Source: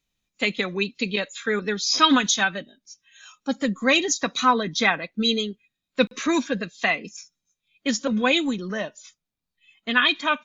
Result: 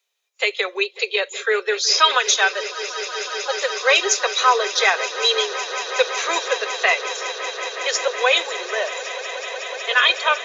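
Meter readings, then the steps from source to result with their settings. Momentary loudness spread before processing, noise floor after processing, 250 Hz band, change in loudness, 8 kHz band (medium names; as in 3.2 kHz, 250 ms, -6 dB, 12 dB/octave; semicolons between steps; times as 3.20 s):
12 LU, -45 dBFS, -18.5 dB, +3.0 dB, no reading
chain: steep high-pass 390 Hz 96 dB/octave; in parallel at +1 dB: peak limiter -13.5 dBFS, peak gain reduction 9.5 dB; on the sum: echo with a slow build-up 185 ms, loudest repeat 8, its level -17.5 dB; trim -1 dB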